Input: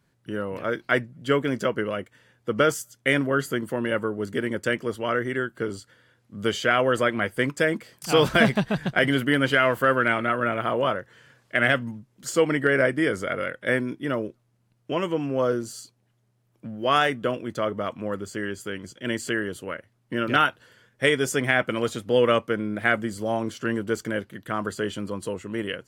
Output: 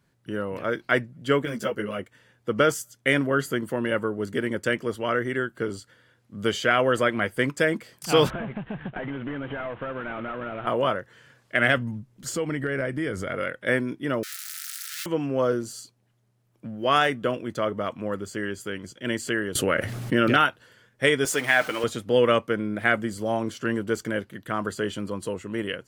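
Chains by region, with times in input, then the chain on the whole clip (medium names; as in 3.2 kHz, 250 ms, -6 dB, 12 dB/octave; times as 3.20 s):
1.45–1.99 s: treble shelf 8.9 kHz +11.5 dB + three-phase chorus
8.30–10.67 s: CVSD coder 16 kbps + compression 8:1, threshold -28 dBFS + peaking EQ 2.2 kHz -3 dB 1 oct
11.77–13.34 s: bass shelf 140 Hz +11.5 dB + compression 2.5:1, threshold -27 dBFS
14.23–15.06 s: one-bit comparator + rippled Chebyshev high-pass 1.3 kHz, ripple 3 dB + treble shelf 4.7 kHz +10.5 dB
19.55–20.37 s: peaking EQ 980 Hz -3 dB 0.21 oct + band-stop 1 kHz, Q 17 + level flattener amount 70%
21.25–21.84 s: jump at every zero crossing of -32 dBFS + high-pass 560 Hz 6 dB/octave + comb 6.6 ms, depth 43%
whole clip: none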